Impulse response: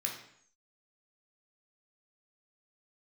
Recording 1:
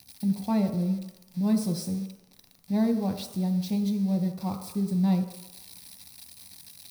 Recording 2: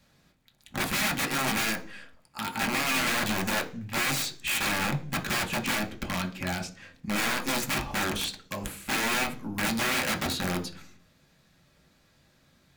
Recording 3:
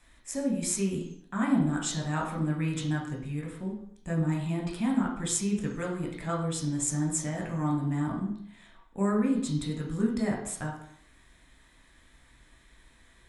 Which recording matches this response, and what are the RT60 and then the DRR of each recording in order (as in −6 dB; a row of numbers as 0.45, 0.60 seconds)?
3; 1.0, 0.45, 0.65 seconds; 4.5, 1.0, −1.0 decibels